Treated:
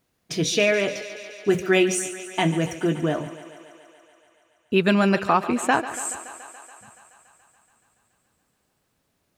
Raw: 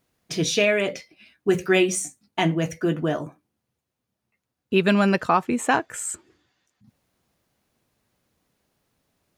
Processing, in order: thinning echo 0.142 s, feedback 77%, high-pass 230 Hz, level -14 dB

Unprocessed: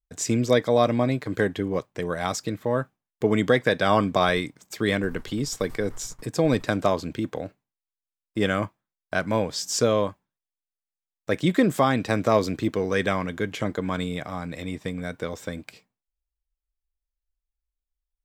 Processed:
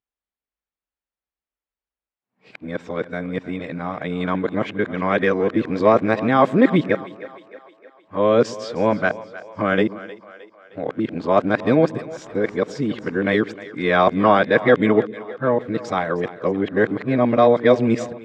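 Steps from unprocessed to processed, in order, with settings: whole clip reversed; BPF 160–2400 Hz; split-band echo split 390 Hz, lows 0.109 s, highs 0.31 s, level -16 dB; gain +6 dB

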